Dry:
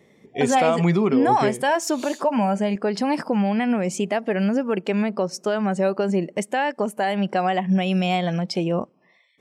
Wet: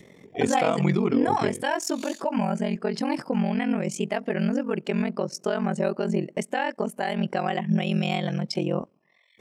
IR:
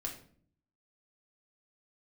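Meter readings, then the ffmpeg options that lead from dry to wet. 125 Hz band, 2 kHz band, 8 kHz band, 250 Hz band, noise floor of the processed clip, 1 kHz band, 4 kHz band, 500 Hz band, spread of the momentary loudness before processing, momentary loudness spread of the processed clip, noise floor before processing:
-2.5 dB, -3.5 dB, -3.5 dB, -3.5 dB, -63 dBFS, -5.5 dB, -3.0 dB, -4.5 dB, 6 LU, 6 LU, -59 dBFS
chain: -af "agate=range=0.447:threshold=0.00631:ratio=16:detection=peak,adynamicequalizer=threshold=0.02:dfrequency=780:dqfactor=0.94:tfrequency=780:tqfactor=0.94:attack=5:release=100:ratio=0.375:range=2:mode=cutabove:tftype=bell,aeval=exprs='val(0)*sin(2*PI*22*n/s)':c=same,acompressor=mode=upward:threshold=0.0141:ratio=2.5"

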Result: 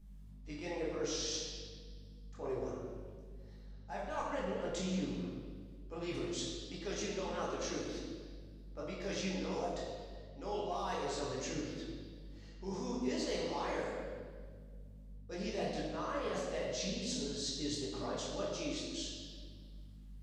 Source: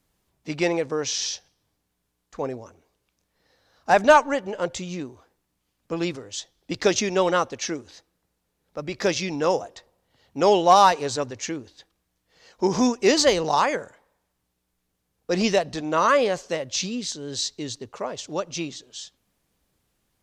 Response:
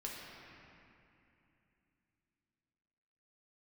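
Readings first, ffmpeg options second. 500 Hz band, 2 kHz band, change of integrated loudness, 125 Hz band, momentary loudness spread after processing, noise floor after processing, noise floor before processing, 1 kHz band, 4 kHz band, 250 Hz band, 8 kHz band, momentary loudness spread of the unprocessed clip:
-15.5 dB, -18.0 dB, -17.0 dB, -9.0 dB, 16 LU, -52 dBFS, -76 dBFS, -20.5 dB, -13.0 dB, -12.5 dB, -13.5 dB, 18 LU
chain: -filter_complex "[0:a]areverse,acompressor=threshold=0.0251:ratio=16,areverse,aeval=exprs='val(0)+0.00316*(sin(2*PI*50*n/s)+sin(2*PI*2*50*n/s)/2+sin(2*PI*3*50*n/s)/3+sin(2*PI*4*50*n/s)/4+sin(2*PI*5*50*n/s)/5)':c=same,flanger=delay=20:depth=7.4:speed=2.8[s0];[1:a]atrim=start_sample=2205,asetrate=83790,aresample=44100[s1];[s0][s1]afir=irnorm=-1:irlink=0,volume=1.88"

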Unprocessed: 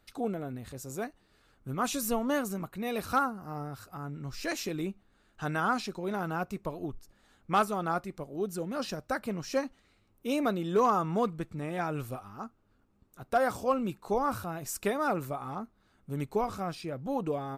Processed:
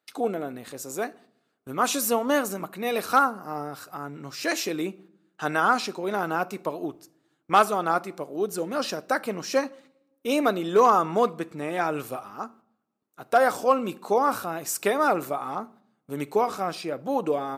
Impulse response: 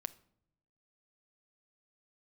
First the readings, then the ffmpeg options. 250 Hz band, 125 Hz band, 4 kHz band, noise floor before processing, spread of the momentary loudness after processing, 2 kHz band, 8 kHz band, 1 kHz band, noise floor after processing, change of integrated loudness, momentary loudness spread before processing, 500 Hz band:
+3.0 dB, -2.5 dB, +8.0 dB, -68 dBFS, 14 LU, +7.5 dB, +7.5 dB, +7.5 dB, -74 dBFS, +7.0 dB, 13 LU, +7.0 dB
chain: -filter_complex "[0:a]highpass=300,agate=range=0.141:threshold=0.00112:ratio=16:detection=peak,asplit=2[s0][s1];[1:a]atrim=start_sample=2205[s2];[s1][s2]afir=irnorm=-1:irlink=0,volume=2.51[s3];[s0][s3]amix=inputs=2:normalize=0,volume=0.841"

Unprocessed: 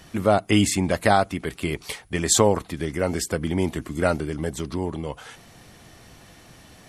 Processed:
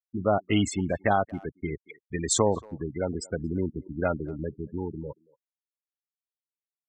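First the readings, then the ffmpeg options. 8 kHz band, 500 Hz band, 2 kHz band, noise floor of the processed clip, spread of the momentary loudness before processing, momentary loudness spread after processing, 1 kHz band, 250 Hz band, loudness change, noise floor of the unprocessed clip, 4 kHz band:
-7.0 dB, -5.0 dB, -7.0 dB, under -85 dBFS, 11 LU, 12 LU, -5.5 dB, -5.0 dB, -5.5 dB, -50 dBFS, -8.0 dB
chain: -filter_complex "[0:a]lowpass=11000,afftfilt=real='re*gte(hypot(re,im),0.1)':imag='im*gte(hypot(re,im),0.1)':win_size=1024:overlap=0.75,asplit=2[s0][s1];[s1]adelay=230,highpass=300,lowpass=3400,asoftclip=type=hard:threshold=0.266,volume=0.0631[s2];[s0][s2]amix=inputs=2:normalize=0,volume=0.562"

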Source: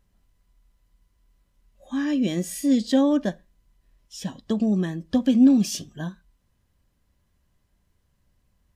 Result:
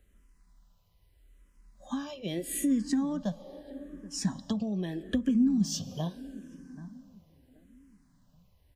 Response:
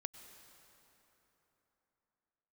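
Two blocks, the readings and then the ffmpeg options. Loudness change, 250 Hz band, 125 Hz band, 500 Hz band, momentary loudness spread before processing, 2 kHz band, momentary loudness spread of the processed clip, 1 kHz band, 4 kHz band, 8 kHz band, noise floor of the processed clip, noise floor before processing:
-9.0 dB, -8.0 dB, -4.5 dB, -10.5 dB, 18 LU, -8.0 dB, 20 LU, -7.5 dB, -5.0 dB, -2.5 dB, -67 dBFS, -69 dBFS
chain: -filter_complex "[0:a]asplit=2[s0][s1];[1:a]atrim=start_sample=2205[s2];[s1][s2]afir=irnorm=-1:irlink=0,volume=0.422[s3];[s0][s3]amix=inputs=2:normalize=0,acrossover=split=140[s4][s5];[s5]acompressor=threshold=0.0355:ratio=10[s6];[s4][s6]amix=inputs=2:normalize=0,asplit=2[s7][s8];[s8]adelay=780,lowpass=f=800:p=1,volume=0.168,asplit=2[s9][s10];[s10]adelay=780,lowpass=f=800:p=1,volume=0.36,asplit=2[s11][s12];[s12]adelay=780,lowpass=f=800:p=1,volume=0.36[s13];[s7][s9][s11][s13]amix=inputs=4:normalize=0,asplit=2[s14][s15];[s15]afreqshift=-0.79[s16];[s14][s16]amix=inputs=2:normalize=1,volume=1.33"

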